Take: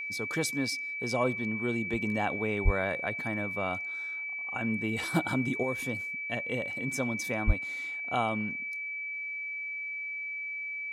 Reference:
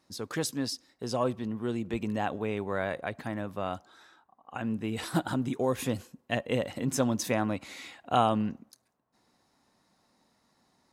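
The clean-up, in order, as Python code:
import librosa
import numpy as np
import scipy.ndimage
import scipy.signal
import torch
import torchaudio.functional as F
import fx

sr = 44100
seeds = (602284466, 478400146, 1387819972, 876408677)

y = fx.notch(x, sr, hz=2300.0, q=30.0)
y = fx.highpass(y, sr, hz=140.0, slope=24, at=(2.64, 2.76), fade=0.02)
y = fx.highpass(y, sr, hz=140.0, slope=24, at=(7.46, 7.58), fade=0.02)
y = fx.fix_level(y, sr, at_s=5.63, step_db=5.5)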